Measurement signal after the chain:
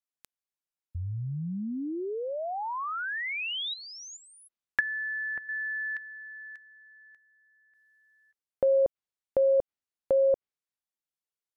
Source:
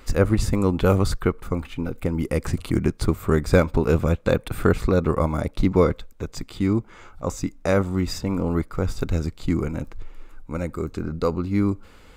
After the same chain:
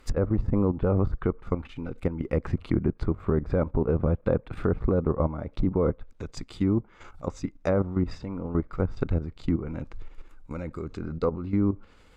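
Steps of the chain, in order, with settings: low-pass that closes with the level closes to 1 kHz, closed at -17.5 dBFS; level held to a coarse grid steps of 11 dB

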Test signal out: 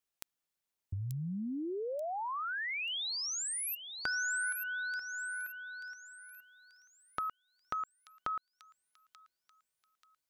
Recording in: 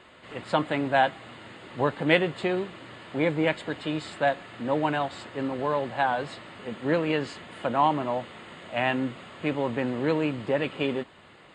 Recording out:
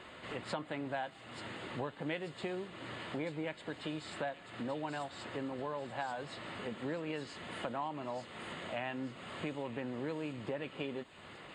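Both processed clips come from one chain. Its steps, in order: compression 4:1, threshold -40 dBFS; on a send: feedback echo behind a high-pass 885 ms, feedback 38%, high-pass 4.2 kHz, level -4 dB; on the sum: trim +1 dB

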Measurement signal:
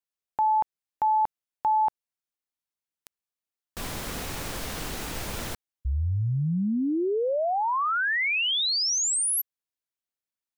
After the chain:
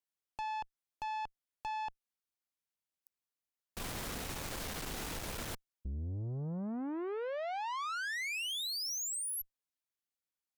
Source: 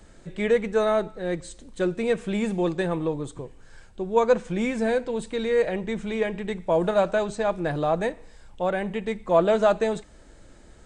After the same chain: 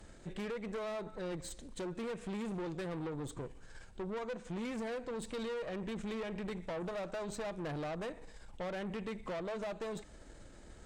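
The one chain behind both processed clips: compression 12:1, threshold -27 dBFS; valve stage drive 35 dB, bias 0.5; trim -1.5 dB

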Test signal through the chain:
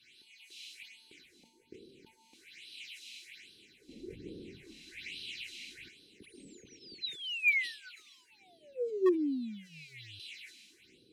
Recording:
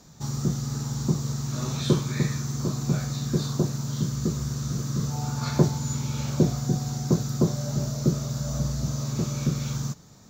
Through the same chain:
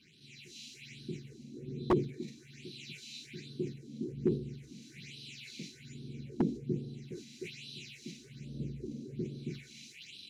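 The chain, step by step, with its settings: one-bit delta coder 64 kbps, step -32 dBFS; dynamic bell 430 Hz, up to +5 dB, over -39 dBFS, Q 1.1; word length cut 8-bit, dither triangular; small resonant body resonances 1.5/4 kHz, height 14 dB, ringing for 45 ms; phase shifter stages 6, 1.2 Hz, lowest notch 100–2100 Hz; level rider gain up to 6 dB; elliptic band-stop 370–2300 Hz, stop band 40 dB; treble shelf 5.4 kHz -10 dB; LFO band-pass sine 0.42 Hz 460–2800 Hz; wavefolder -19.5 dBFS; decay stretcher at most 120 dB/s

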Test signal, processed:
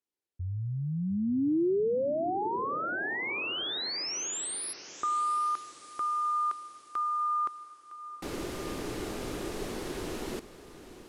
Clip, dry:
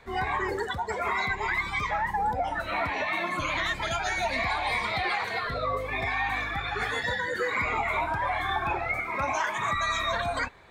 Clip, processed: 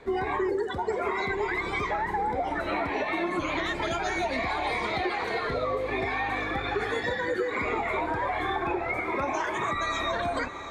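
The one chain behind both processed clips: peaking EQ 360 Hz +14.5 dB 1.1 oct; on a send: echo that smears into a reverb 748 ms, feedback 49%, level -14 dB; on the sum: compression, threshold -25 dBFS; Bessel low-pass 11 kHz, order 8

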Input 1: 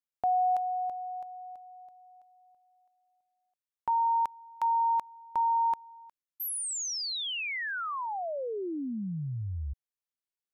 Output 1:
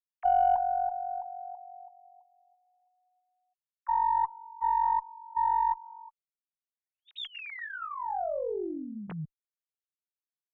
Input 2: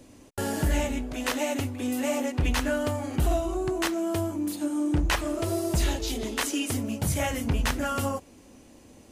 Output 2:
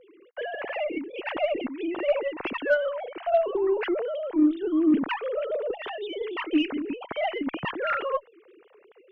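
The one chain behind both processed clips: formants replaced by sine waves; Chebyshev shaper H 5 -44 dB, 6 -34 dB, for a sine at -11 dBFS

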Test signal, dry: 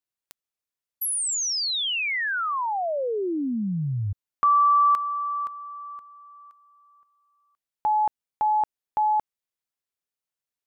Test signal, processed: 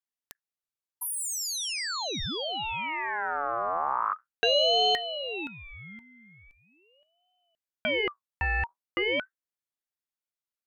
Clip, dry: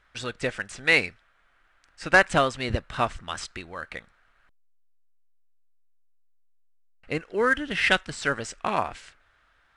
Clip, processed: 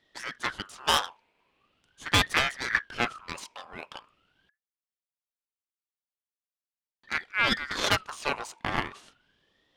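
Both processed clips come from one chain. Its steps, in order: octave divider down 1 oct, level +1 dB; Chebyshev shaper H 6 -11 dB, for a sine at -5.5 dBFS; ring modulator with a swept carrier 1.4 kHz, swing 35%, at 0.41 Hz; trim -3.5 dB

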